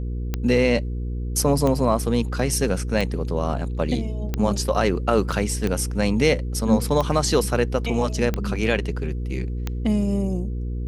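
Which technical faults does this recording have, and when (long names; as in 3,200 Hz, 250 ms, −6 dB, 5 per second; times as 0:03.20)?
mains hum 60 Hz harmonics 8 −27 dBFS
scratch tick 45 rpm −11 dBFS
0:05.32: drop-out 3.7 ms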